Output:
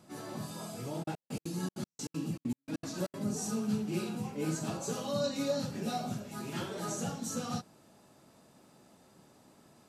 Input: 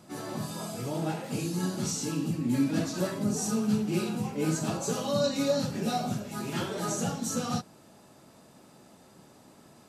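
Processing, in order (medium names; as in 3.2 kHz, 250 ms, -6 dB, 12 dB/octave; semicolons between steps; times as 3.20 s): 1.02–3.17 s: trance gate ".xxx.x..x" 196 bpm -60 dB; trim -5.5 dB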